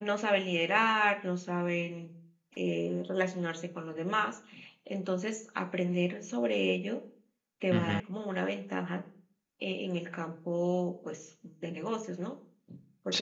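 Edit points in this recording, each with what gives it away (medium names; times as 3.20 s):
8.00 s: sound stops dead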